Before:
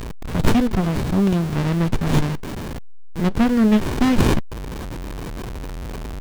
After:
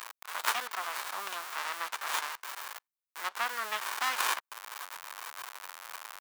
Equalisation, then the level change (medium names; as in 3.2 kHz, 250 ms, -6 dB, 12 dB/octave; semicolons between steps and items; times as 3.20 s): ladder high-pass 900 Hz, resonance 35%; treble shelf 8.8 kHz +9.5 dB; +2.0 dB